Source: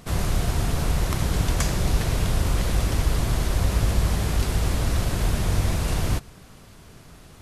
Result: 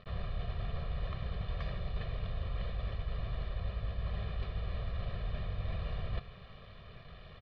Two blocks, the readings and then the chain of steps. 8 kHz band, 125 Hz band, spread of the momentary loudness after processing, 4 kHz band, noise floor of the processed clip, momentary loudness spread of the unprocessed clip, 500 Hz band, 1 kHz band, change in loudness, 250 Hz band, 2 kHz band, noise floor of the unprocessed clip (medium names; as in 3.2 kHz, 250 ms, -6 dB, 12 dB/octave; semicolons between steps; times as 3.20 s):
under -40 dB, -14.5 dB, 14 LU, -17.5 dB, -52 dBFS, 2 LU, -15.0 dB, -16.0 dB, -15.0 dB, -19.0 dB, -16.0 dB, -47 dBFS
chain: reverse; compression 12:1, threshold -29 dBFS, peak gain reduction 15.5 dB; reverse; bit crusher 8-bit; steep low-pass 4 kHz 48 dB/octave; comb 1.7 ms, depth 82%; trim -7.5 dB